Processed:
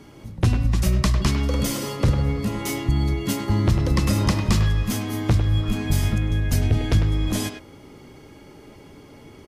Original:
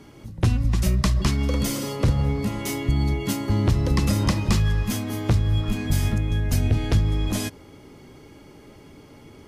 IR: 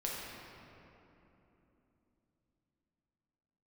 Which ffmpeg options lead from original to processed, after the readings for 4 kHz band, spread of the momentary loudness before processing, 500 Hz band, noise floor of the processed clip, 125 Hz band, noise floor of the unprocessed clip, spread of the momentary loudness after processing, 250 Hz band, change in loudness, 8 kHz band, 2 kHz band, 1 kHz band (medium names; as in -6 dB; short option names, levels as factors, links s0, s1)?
+1.5 dB, 5 LU, +1.0 dB, -46 dBFS, +1.0 dB, -48 dBFS, 5 LU, +1.0 dB, +1.0 dB, +1.0 dB, +1.5 dB, +1.5 dB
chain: -filter_complex "[0:a]asplit=2[s0][s1];[s1]adelay=100,highpass=300,lowpass=3400,asoftclip=type=hard:threshold=0.1,volume=0.501[s2];[s0][s2]amix=inputs=2:normalize=0,volume=1.12"